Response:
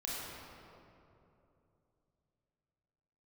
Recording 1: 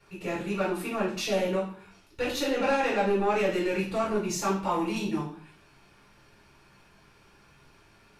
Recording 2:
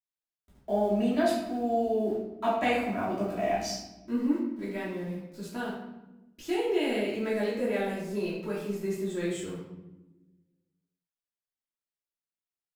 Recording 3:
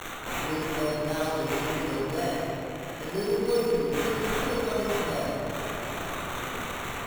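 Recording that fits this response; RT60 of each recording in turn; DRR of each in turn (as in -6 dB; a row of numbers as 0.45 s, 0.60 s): 3; 0.50 s, 1.0 s, 2.9 s; -7.0 dB, -8.5 dB, -6.5 dB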